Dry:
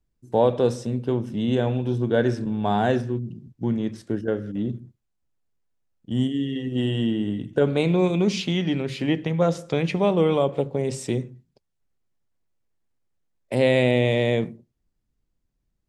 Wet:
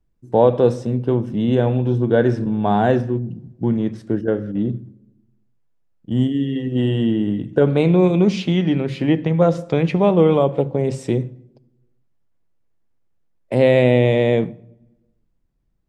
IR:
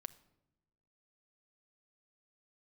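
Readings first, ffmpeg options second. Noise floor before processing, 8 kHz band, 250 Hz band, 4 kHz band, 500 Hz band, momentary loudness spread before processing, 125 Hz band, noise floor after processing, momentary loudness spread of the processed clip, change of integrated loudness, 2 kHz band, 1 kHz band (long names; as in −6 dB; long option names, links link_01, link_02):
−76 dBFS, can't be measured, +5.5 dB, −0.5 dB, +5.5 dB, 9 LU, +6.0 dB, −65 dBFS, 9 LU, +5.5 dB, +2.0 dB, +4.5 dB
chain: -filter_complex "[0:a]lowpass=frequency=1600:poles=1,asplit=2[link_01][link_02];[1:a]atrim=start_sample=2205,highshelf=frequency=6500:gain=10.5[link_03];[link_02][link_03]afir=irnorm=-1:irlink=0,volume=4dB[link_04];[link_01][link_04]amix=inputs=2:normalize=0"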